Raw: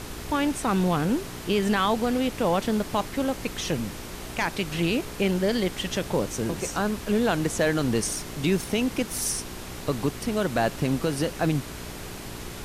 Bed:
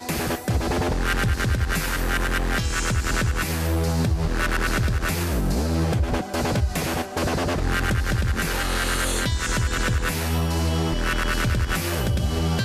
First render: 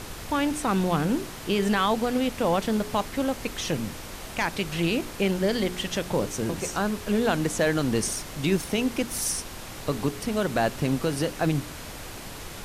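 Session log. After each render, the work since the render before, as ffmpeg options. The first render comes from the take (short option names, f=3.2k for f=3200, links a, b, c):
-af "bandreject=f=60:t=h:w=4,bandreject=f=120:t=h:w=4,bandreject=f=180:t=h:w=4,bandreject=f=240:t=h:w=4,bandreject=f=300:t=h:w=4,bandreject=f=360:t=h:w=4,bandreject=f=420:t=h:w=4"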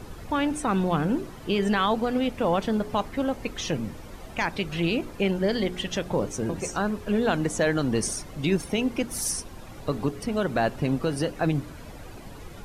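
-af "afftdn=nr=12:nf=-39"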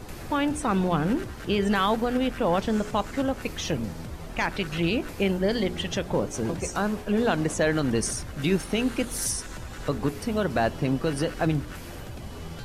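-filter_complex "[1:a]volume=-17.5dB[a];[0:a][a]amix=inputs=2:normalize=0"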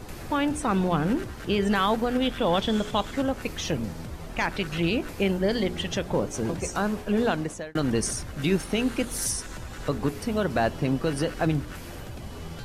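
-filter_complex "[0:a]asettb=1/sr,asplit=3[a][b][c];[a]atrim=end=2.224[d];[b]atrim=start=2.22:end=3.14,asetpts=PTS-STARTPTS,afade=t=in:d=0.004:c=qsin,afade=t=out:st=0.916:d=0.004:c=qsin,equalizer=f=3.4k:t=o:w=0.25:g=14[e];[c]atrim=start=3.136[f];[d][e]acrossfade=d=0.004:c1=hsin:c2=qsin[g];[g][f]acrossfade=d=0.004:c1=qsin:c2=hsin,asplit=2[h][i];[h]atrim=end=7.75,asetpts=PTS-STARTPTS,afade=t=out:st=7.24:d=0.51[j];[i]atrim=start=7.75,asetpts=PTS-STARTPTS,afade=t=in:d=0.004:c=hsin[k];[j][k]concat=n=2:v=0:a=1"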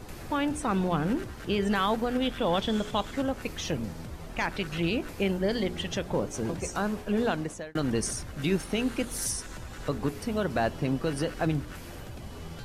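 -af "volume=-3dB"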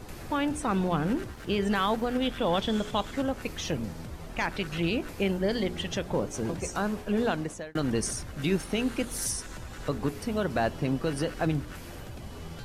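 -filter_complex "[0:a]asettb=1/sr,asplit=3[a][b][c];[a]atrim=end=1.324[d];[b]atrim=start=1.32:end=2.24,asetpts=PTS-STARTPTS,afade=t=in:d=0.004:c=qsin,afade=t=out:st=0.916:d=0.004:c=qsin,aeval=exprs='sgn(val(0))*max(abs(val(0))-0.00178,0)':c=same[e];[c]atrim=start=2.236[f];[d][e]acrossfade=d=0.004:c1=hsin:c2=qsin[g];[g][f]acrossfade=d=0.004:c1=qsin:c2=hsin"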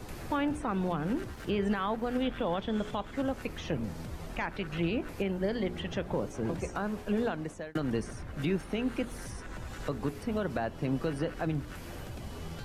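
-filter_complex "[0:a]acrossover=split=140|2800[a][b][c];[c]acompressor=threshold=-51dB:ratio=5[d];[a][b][d]amix=inputs=3:normalize=0,alimiter=limit=-20.5dB:level=0:latency=1:release=477"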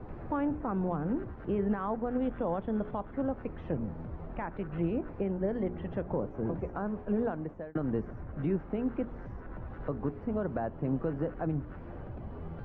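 -af "lowpass=1.3k,aemphasis=mode=reproduction:type=75kf"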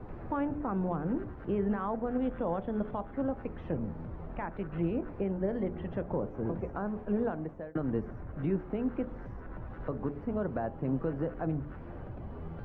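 -af "bandreject=f=73.08:t=h:w=4,bandreject=f=146.16:t=h:w=4,bandreject=f=219.24:t=h:w=4,bandreject=f=292.32:t=h:w=4,bandreject=f=365.4:t=h:w=4,bandreject=f=438.48:t=h:w=4,bandreject=f=511.56:t=h:w=4,bandreject=f=584.64:t=h:w=4,bandreject=f=657.72:t=h:w=4,bandreject=f=730.8:t=h:w=4,bandreject=f=803.88:t=h:w=4"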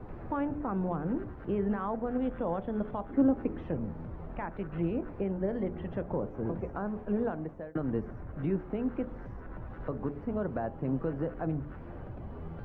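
-filter_complex "[0:a]asettb=1/sr,asplit=3[a][b][c];[a]atrim=end=3.094[d];[b]atrim=start=3.09:end=3.64,asetpts=PTS-STARTPTS,afade=t=in:d=0.004:c=qsin,afade=t=out:st=0.546:d=0.004:c=qsin,equalizer=f=300:w=1.5:g=10.5[e];[c]atrim=start=3.636[f];[d][e]acrossfade=d=0.004:c1=hsin:c2=qsin[g];[g][f]acrossfade=d=0.004:c1=qsin:c2=hsin"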